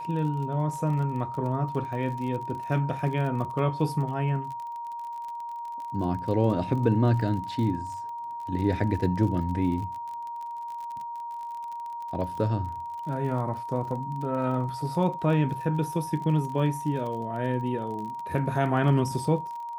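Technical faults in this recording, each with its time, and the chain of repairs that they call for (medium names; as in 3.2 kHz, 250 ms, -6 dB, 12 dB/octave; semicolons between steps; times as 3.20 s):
crackle 34 per s -35 dBFS
whine 940 Hz -33 dBFS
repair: de-click; band-stop 940 Hz, Q 30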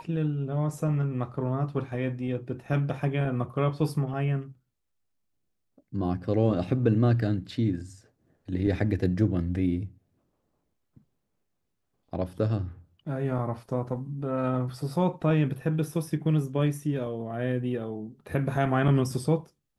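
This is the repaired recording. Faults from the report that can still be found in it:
nothing left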